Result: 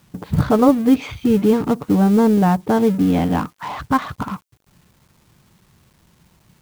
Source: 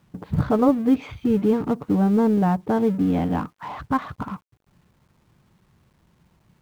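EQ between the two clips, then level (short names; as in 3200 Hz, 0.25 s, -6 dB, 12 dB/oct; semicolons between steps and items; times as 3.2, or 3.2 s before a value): high shelf 3200 Hz +10 dB; +4.5 dB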